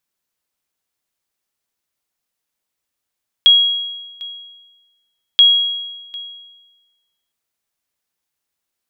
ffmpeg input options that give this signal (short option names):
-f lavfi -i "aevalsrc='0.668*(sin(2*PI*3300*mod(t,1.93))*exp(-6.91*mod(t,1.93)/1.23)+0.0794*sin(2*PI*3300*max(mod(t,1.93)-0.75,0))*exp(-6.91*max(mod(t,1.93)-0.75,0)/1.23))':d=3.86:s=44100"